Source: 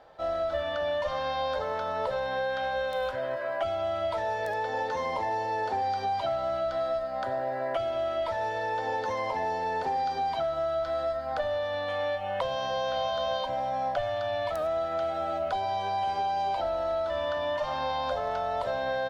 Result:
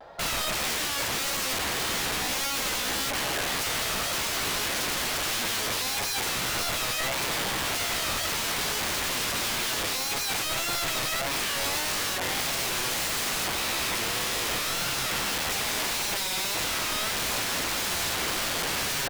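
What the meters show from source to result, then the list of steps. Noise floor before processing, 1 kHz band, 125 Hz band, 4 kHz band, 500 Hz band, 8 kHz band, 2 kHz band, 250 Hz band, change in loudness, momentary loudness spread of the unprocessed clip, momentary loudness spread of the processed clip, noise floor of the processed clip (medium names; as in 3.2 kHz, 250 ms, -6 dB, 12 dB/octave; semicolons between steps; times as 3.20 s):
-33 dBFS, -4.5 dB, +4.5 dB, +13.5 dB, -8.5 dB, no reading, +8.0 dB, +6.0 dB, +3.5 dB, 2 LU, 0 LU, -30 dBFS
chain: integer overflow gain 31.5 dB; vibrato 1.7 Hz 94 cents; trim +7.5 dB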